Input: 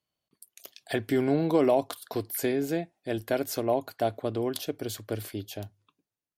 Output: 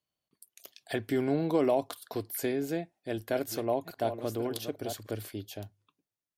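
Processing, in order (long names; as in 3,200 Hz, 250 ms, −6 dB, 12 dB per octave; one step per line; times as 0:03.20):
0:02.79–0:05.11: delay that plays each chunk backwards 560 ms, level −9 dB
level −3.5 dB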